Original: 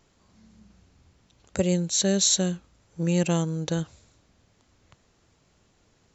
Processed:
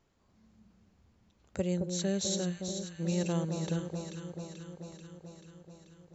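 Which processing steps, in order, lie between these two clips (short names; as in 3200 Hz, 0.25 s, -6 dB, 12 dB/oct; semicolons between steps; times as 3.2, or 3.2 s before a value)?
high shelf 3400 Hz -7 dB; echo with dull and thin repeats by turns 0.218 s, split 1100 Hz, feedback 81%, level -5.5 dB; gain -8 dB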